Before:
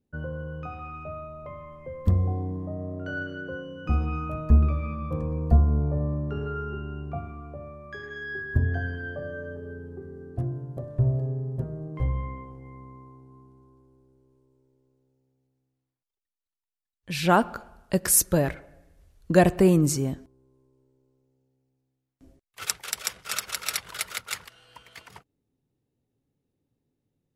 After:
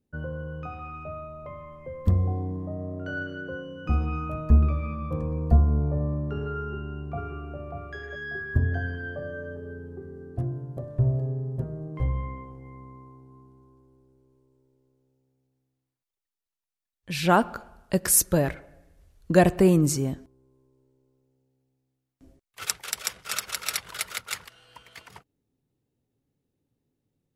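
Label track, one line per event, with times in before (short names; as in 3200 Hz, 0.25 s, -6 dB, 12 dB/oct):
6.580000	7.560000	echo throw 0.59 s, feedback 25%, level -4.5 dB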